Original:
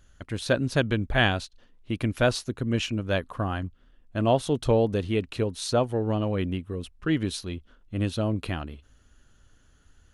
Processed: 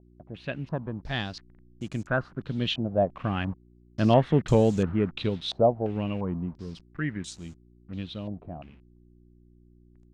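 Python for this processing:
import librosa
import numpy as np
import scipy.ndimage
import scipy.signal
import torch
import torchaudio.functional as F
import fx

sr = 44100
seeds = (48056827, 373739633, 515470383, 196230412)

y = fx.delta_hold(x, sr, step_db=-42.5)
y = fx.doppler_pass(y, sr, speed_mps=16, closest_m=14.0, pass_at_s=4.2)
y = fx.peak_eq(y, sr, hz=170.0, db=9.5, octaves=0.83)
y = fx.dmg_buzz(y, sr, base_hz=60.0, harmonics=6, level_db=-57.0, tilt_db=-4, odd_only=False)
y = fx.filter_held_lowpass(y, sr, hz=2.9, low_hz=700.0, high_hz=7100.0)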